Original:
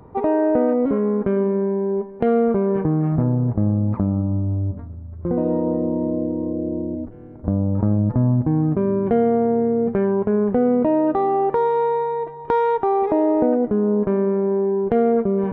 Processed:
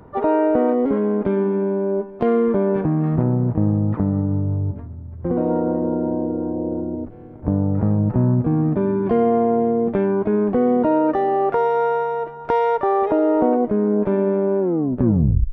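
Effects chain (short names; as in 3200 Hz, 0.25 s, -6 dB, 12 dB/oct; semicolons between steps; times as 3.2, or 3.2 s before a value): tape stop at the end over 0.93 s; harmoniser +7 st -10 dB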